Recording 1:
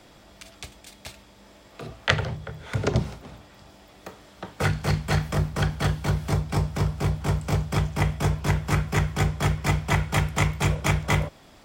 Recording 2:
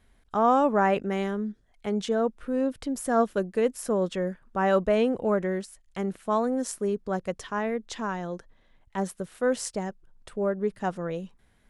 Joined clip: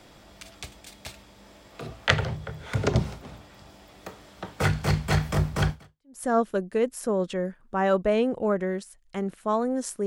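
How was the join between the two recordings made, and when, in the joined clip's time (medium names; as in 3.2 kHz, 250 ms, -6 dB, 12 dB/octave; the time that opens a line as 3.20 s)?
recording 1
5.96 s: go over to recording 2 from 2.78 s, crossfade 0.52 s exponential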